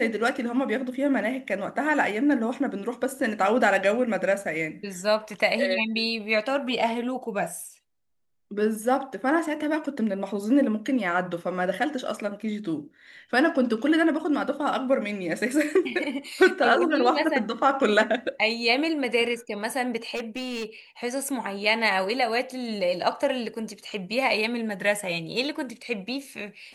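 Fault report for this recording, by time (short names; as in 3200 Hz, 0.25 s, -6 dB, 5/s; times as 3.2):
20.15–20.65 clipped -27 dBFS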